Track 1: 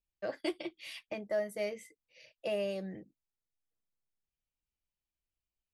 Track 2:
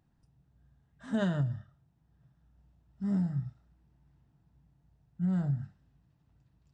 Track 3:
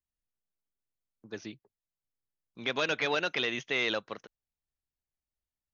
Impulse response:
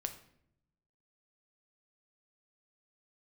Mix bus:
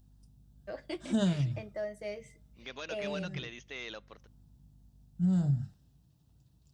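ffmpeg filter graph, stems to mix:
-filter_complex "[0:a]lowpass=frequency=8700:width=0.5412,lowpass=frequency=8700:width=1.3066,adelay=450,volume=-6dB,asplit=2[link_01][link_02];[link_02]volume=-12dB[link_03];[1:a]tiltshelf=frequency=890:gain=5,aexciter=amount=6.5:drive=4.2:freq=3000,volume=-2.5dB[link_04];[2:a]equalizer=frequency=6300:width_type=o:width=0.77:gain=6,aeval=exprs='val(0)+0.00447*(sin(2*PI*50*n/s)+sin(2*PI*2*50*n/s)/2+sin(2*PI*3*50*n/s)/3+sin(2*PI*4*50*n/s)/4+sin(2*PI*5*50*n/s)/5)':channel_layout=same,volume=-14dB,asplit=3[link_05][link_06][link_07];[link_06]volume=-18.5dB[link_08];[link_07]apad=whole_len=296812[link_09];[link_04][link_09]sidechaincompress=threshold=-52dB:ratio=8:attack=16:release=255[link_10];[3:a]atrim=start_sample=2205[link_11];[link_03][link_08]amix=inputs=2:normalize=0[link_12];[link_12][link_11]afir=irnorm=-1:irlink=0[link_13];[link_01][link_10][link_05][link_13]amix=inputs=4:normalize=0"

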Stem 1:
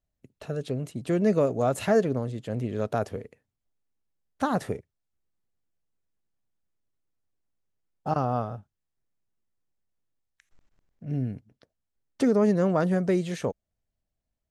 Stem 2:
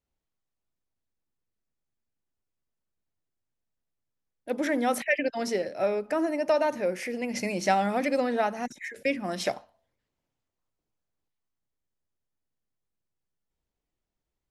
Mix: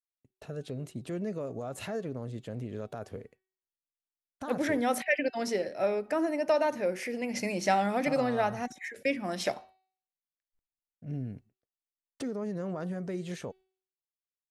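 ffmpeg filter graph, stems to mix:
ffmpeg -i stem1.wav -i stem2.wav -filter_complex "[0:a]alimiter=limit=-23dB:level=0:latency=1:release=159,volume=-4.5dB[link_01];[1:a]volume=-2dB[link_02];[link_01][link_02]amix=inputs=2:normalize=0,agate=range=-33dB:threshold=-48dB:ratio=3:detection=peak,bandreject=frequency=377.3:width_type=h:width=4,bandreject=frequency=754.6:width_type=h:width=4,bandreject=frequency=1131.9:width_type=h:width=4,bandreject=frequency=1509.2:width_type=h:width=4,bandreject=frequency=1886.5:width_type=h:width=4,bandreject=frequency=2263.8:width_type=h:width=4,bandreject=frequency=2641.1:width_type=h:width=4,bandreject=frequency=3018.4:width_type=h:width=4,bandreject=frequency=3395.7:width_type=h:width=4,bandreject=frequency=3773:width_type=h:width=4,bandreject=frequency=4150.3:width_type=h:width=4,bandreject=frequency=4527.6:width_type=h:width=4,bandreject=frequency=4904.9:width_type=h:width=4" out.wav

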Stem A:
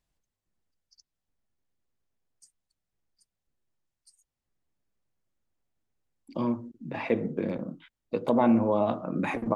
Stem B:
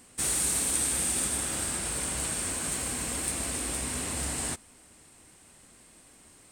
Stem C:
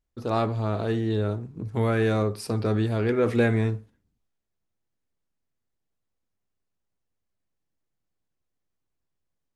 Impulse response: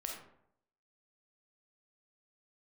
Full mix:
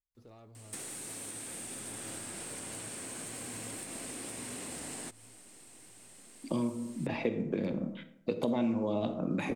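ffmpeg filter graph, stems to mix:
-filter_complex "[0:a]adelay=150,volume=1dB,asplit=2[link_01][link_02];[link_02]volume=-4.5dB[link_03];[1:a]highpass=190,asoftclip=type=tanh:threshold=-15.5dB,adelay=550,volume=1dB[link_04];[2:a]asubboost=boost=10:cutoff=81,acompressor=threshold=-32dB:ratio=3,asoftclip=type=tanh:threshold=-24.5dB,volume=-19.5dB,asplit=2[link_05][link_06];[link_06]volume=-9.5dB[link_07];[link_04][link_05]amix=inputs=2:normalize=0,equalizer=frequency=1200:width=1:gain=-4.5,acompressor=threshold=-36dB:ratio=4,volume=0dB[link_08];[3:a]atrim=start_sample=2205[link_09];[link_03][link_09]afir=irnorm=-1:irlink=0[link_10];[link_07]aecho=0:1:791|1582|2373|3164|3955|4746:1|0.46|0.212|0.0973|0.0448|0.0206[link_11];[link_01][link_08][link_10][link_11]amix=inputs=4:normalize=0,acrossover=split=570|2700[link_12][link_13][link_14];[link_12]acompressor=threshold=-30dB:ratio=4[link_15];[link_13]acompressor=threshold=-47dB:ratio=4[link_16];[link_14]acompressor=threshold=-42dB:ratio=4[link_17];[link_15][link_16][link_17]amix=inputs=3:normalize=0"

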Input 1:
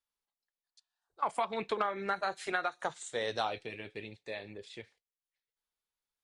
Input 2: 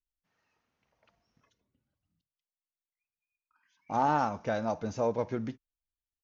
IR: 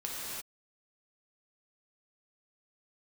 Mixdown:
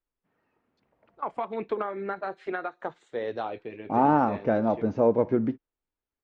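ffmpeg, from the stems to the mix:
-filter_complex "[0:a]volume=-2dB[link_01];[1:a]volume=2dB[link_02];[link_01][link_02]amix=inputs=2:normalize=0,lowpass=2200,equalizer=frequency=320:width_type=o:width=1.7:gain=9.5"

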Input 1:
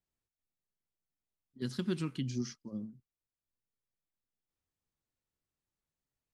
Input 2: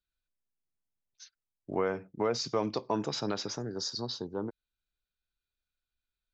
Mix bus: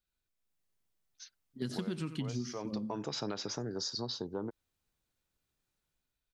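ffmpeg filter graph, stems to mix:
ffmpeg -i stem1.wav -i stem2.wav -filter_complex "[0:a]dynaudnorm=framelen=100:gausssize=9:maxgain=10.5dB,volume=-5dB,asplit=3[link_01][link_02][link_03];[link_02]volume=-14dB[link_04];[1:a]volume=0.5dB[link_05];[link_03]apad=whole_len=279505[link_06];[link_05][link_06]sidechaincompress=threshold=-37dB:ratio=8:attack=12:release=688[link_07];[link_04]aecho=0:1:90:1[link_08];[link_01][link_07][link_08]amix=inputs=3:normalize=0,acompressor=threshold=-33dB:ratio=6" out.wav

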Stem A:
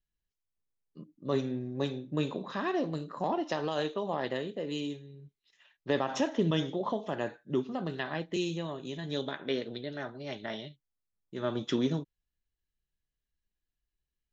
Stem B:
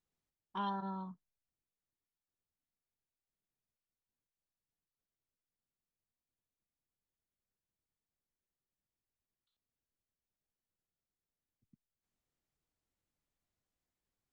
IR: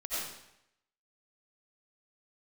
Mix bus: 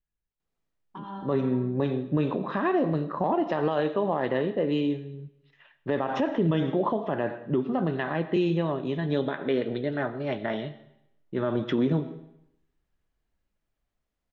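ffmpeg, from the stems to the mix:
-filter_complex "[0:a]dynaudnorm=framelen=210:gausssize=11:maxgain=10dB,lowpass=2600,volume=-0.5dB,asplit=3[link_01][link_02][link_03];[link_02]volume=-19.5dB[link_04];[1:a]alimiter=level_in=13dB:limit=-24dB:level=0:latency=1,volume=-13dB,adelay=400,volume=2.5dB,asplit=2[link_05][link_06];[link_06]volume=-3.5dB[link_07];[link_03]apad=whole_len=649524[link_08];[link_05][link_08]sidechaincompress=threshold=-43dB:ratio=8:attack=12:release=123[link_09];[2:a]atrim=start_sample=2205[link_10];[link_04][link_07]amix=inputs=2:normalize=0[link_11];[link_11][link_10]afir=irnorm=-1:irlink=0[link_12];[link_01][link_09][link_12]amix=inputs=3:normalize=0,highshelf=frequency=4600:gain=-12,alimiter=limit=-16dB:level=0:latency=1:release=88"

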